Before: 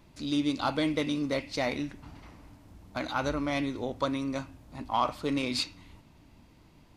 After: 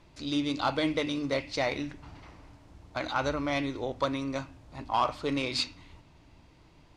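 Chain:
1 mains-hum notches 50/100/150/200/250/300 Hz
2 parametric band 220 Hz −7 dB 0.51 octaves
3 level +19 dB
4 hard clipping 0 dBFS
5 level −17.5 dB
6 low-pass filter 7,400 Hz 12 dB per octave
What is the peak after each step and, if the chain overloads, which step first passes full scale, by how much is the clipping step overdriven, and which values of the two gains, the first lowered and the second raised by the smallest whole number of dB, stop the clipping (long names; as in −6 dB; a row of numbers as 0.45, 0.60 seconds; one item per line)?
−14.5, −14.5, +4.5, 0.0, −17.5, −17.0 dBFS
step 3, 4.5 dB
step 3 +14 dB, step 5 −12.5 dB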